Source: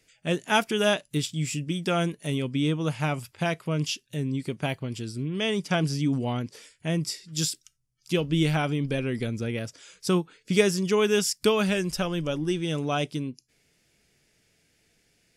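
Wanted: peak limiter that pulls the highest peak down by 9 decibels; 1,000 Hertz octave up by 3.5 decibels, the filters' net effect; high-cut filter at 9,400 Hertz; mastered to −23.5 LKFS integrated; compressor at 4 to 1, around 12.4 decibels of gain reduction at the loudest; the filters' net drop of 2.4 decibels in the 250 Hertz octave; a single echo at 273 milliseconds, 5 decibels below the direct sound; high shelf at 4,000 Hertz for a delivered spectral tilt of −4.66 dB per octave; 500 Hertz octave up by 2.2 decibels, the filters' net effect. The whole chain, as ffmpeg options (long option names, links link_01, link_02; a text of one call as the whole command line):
ffmpeg -i in.wav -af "lowpass=9400,equalizer=frequency=250:width_type=o:gain=-5,equalizer=frequency=500:width_type=o:gain=3.5,equalizer=frequency=1000:width_type=o:gain=3.5,highshelf=frequency=4000:gain=4,acompressor=threshold=-29dB:ratio=4,alimiter=limit=-24dB:level=0:latency=1,aecho=1:1:273:0.562,volume=10dB" out.wav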